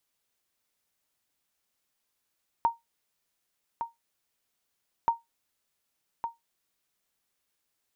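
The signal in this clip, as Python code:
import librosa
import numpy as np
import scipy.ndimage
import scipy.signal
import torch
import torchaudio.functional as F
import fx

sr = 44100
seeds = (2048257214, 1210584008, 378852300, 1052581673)

y = fx.sonar_ping(sr, hz=927.0, decay_s=0.17, every_s=2.43, pings=2, echo_s=1.16, echo_db=-8.5, level_db=-15.5)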